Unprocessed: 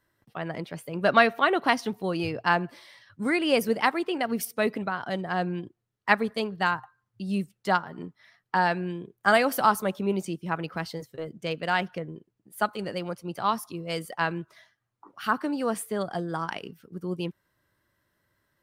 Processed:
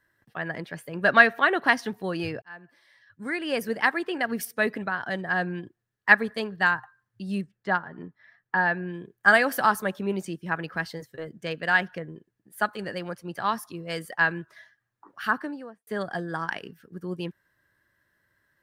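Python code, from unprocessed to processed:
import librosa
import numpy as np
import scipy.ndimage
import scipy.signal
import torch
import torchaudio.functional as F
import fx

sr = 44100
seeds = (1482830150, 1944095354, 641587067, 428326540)

y = fx.spacing_loss(x, sr, db_at_10k=22, at=(7.41, 8.94))
y = fx.studio_fade_out(y, sr, start_s=15.24, length_s=0.63)
y = fx.edit(y, sr, fx.fade_in_span(start_s=2.42, length_s=1.7), tone=tone)
y = fx.peak_eq(y, sr, hz=1700.0, db=12.5, octaves=0.3)
y = F.gain(torch.from_numpy(y), -1.5).numpy()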